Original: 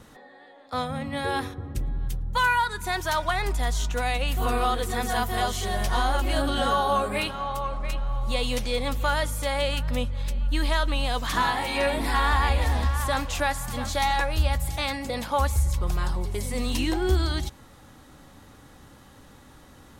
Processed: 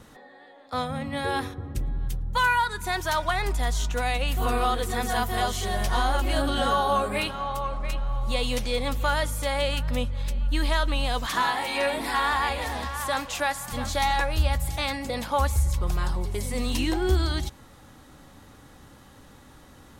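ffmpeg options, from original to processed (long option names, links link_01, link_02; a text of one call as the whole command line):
ffmpeg -i in.wav -filter_complex "[0:a]asettb=1/sr,asplit=3[link_01][link_02][link_03];[link_01]atrim=end=11.264[link_04];[link_02]atrim=start=11.26:end=13.72,asetpts=PTS-STARTPTS,afade=type=in:duration=0.004:curve=qsin,afade=type=out:start_time=2.456:duration=0.004:curve=qsin,highpass=frequency=300:poles=1[link_05];[link_03]atrim=start=13.716[link_06];[link_04][link_05]acrossfade=duration=0.004:curve1=hsin:curve2=qsin[link_07];[link_07][link_06]acrossfade=duration=0.004:curve1=qsin:curve2=hsin" out.wav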